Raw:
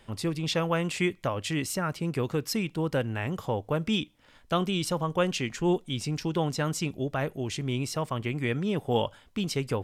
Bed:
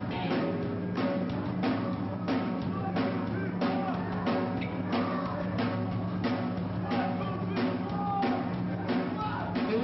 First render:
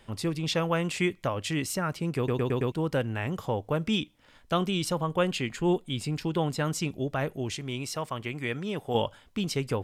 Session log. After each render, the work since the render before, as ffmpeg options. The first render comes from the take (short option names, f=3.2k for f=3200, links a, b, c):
-filter_complex "[0:a]asettb=1/sr,asplit=3[a][b][c];[a]atrim=end=4.944[d];[b]atrim=start=4.94:end=6.65,asetpts=PTS-STARTPTS,afade=t=in:d=0.004:c=qsin,afade=t=out:st=1.706:d=0.004:c=qsin,equalizer=f=5.8k:w=7.5:g=-13[e];[c]atrim=start=6.646[f];[d][e]acrossfade=d=0.004:c1=hsin:c2=qsin[g];[g][f]acrossfade=d=0.004:c1=qsin:c2=hsin,asettb=1/sr,asplit=3[h][i][j];[h]atrim=end=7.554[k];[i]atrim=start=7.55:end=8.95,asetpts=PTS-STARTPTS,afade=t=in:d=0.004:c=qsin,afade=t=out:st=1.396:d=0.004:c=qsin,lowshelf=f=420:g=-6.5[l];[j]atrim=start=8.946[m];[k][l]acrossfade=d=0.004:c1=hsin:c2=qsin[n];[n][m]acrossfade=d=0.004:c1=qsin:c2=hsin,asplit=6[o][p][q][r][s][t];[o]atrim=end=2.282[u];[p]atrim=start=2.168:end=2.282[v];[q]atrim=start=2.168:end=2.282[w];[r]atrim=start=2.168:end=2.282[x];[s]atrim=start=2.168:end=2.282[y];[t]atrim=start=2.718[z];[u][v]acrossfade=d=0.004:c1=hsin:c2=hsin[aa];[aa][w]acrossfade=d=0.004:c1=hsin:c2=hsin[ab];[ab][x]acrossfade=d=0.004:c1=hsin:c2=hsin[ac];[ac][y]acrossfade=d=0.004:c1=hsin:c2=hsin[ad];[ad][z]acrossfade=d=0.004:c1=hsin:c2=hsin"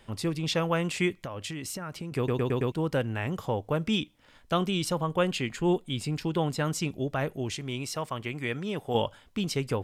-filter_complex "[0:a]asettb=1/sr,asplit=3[a][b][c];[a]atrim=end=1.234[d];[b]atrim=start=1.23:end=2.12,asetpts=PTS-STARTPTS,afade=t=in:d=0.004:c=qsin,afade=t=out:st=0.886:d=0.004:c=qsin,acompressor=threshold=-32dB:ratio=10:attack=3.2:release=140:knee=1:detection=peak[e];[c]atrim=start=2.116[f];[d][e]acrossfade=d=0.004:c1=hsin:c2=qsin[g];[g][f]acrossfade=d=0.004:c1=qsin:c2=hsin"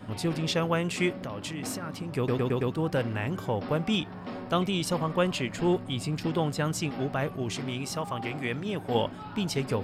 -filter_complex "[1:a]volume=-9dB[a];[0:a][a]amix=inputs=2:normalize=0"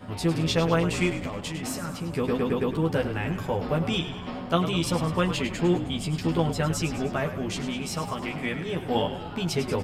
-filter_complex "[0:a]asplit=2[a][b];[b]adelay=12,volume=-3dB[c];[a][c]amix=inputs=2:normalize=0,asplit=7[d][e][f][g][h][i][j];[e]adelay=103,afreqshift=-48,volume=-10.5dB[k];[f]adelay=206,afreqshift=-96,volume=-15.5dB[l];[g]adelay=309,afreqshift=-144,volume=-20.6dB[m];[h]adelay=412,afreqshift=-192,volume=-25.6dB[n];[i]adelay=515,afreqshift=-240,volume=-30.6dB[o];[j]adelay=618,afreqshift=-288,volume=-35.7dB[p];[d][k][l][m][n][o][p]amix=inputs=7:normalize=0"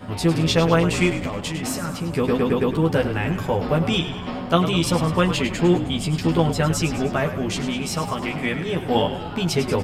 -af "volume=5.5dB"